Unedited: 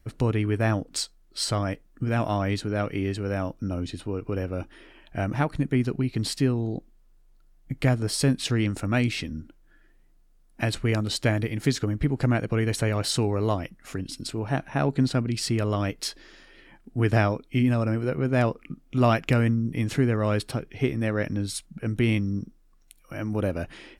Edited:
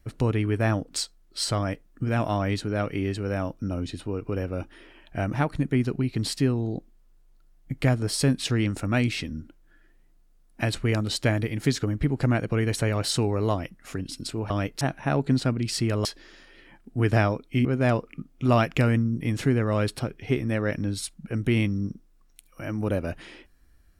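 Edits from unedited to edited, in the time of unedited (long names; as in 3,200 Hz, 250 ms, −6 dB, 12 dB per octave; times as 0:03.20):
0:15.74–0:16.05: move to 0:14.50
0:17.65–0:18.17: remove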